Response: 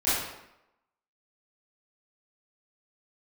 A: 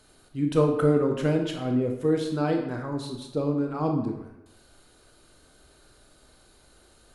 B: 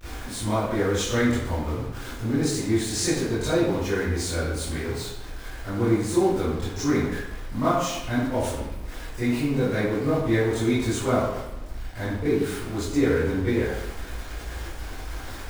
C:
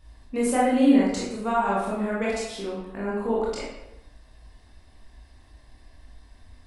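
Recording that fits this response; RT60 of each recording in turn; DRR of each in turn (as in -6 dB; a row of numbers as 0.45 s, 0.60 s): B; 0.85 s, 0.85 s, 0.85 s; 3.0 dB, -14.5 dB, -6.5 dB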